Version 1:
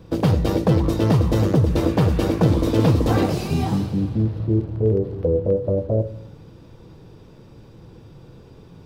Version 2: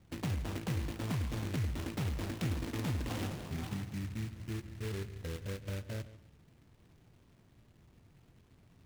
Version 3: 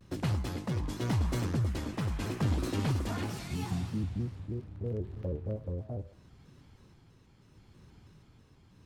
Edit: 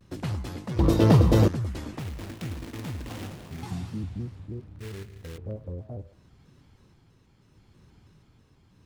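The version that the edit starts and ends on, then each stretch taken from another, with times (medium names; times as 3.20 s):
3
0.79–1.48 s: from 1
1.99–3.63 s: from 2
4.79–5.38 s: from 2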